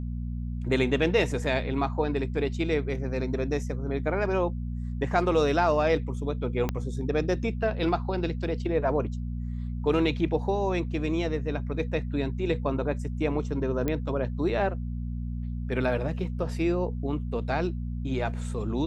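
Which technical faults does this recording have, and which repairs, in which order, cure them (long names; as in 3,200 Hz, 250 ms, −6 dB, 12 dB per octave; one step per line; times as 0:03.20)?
mains hum 60 Hz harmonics 4 −32 dBFS
0:06.69: click −14 dBFS
0:13.88: click −15 dBFS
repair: click removal
hum removal 60 Hz, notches 4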